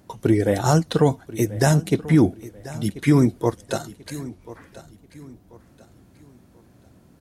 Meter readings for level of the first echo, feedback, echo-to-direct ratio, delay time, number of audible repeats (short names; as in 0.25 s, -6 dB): -17.5 dB, 34%, -17.0 dB, 1.037 s, 2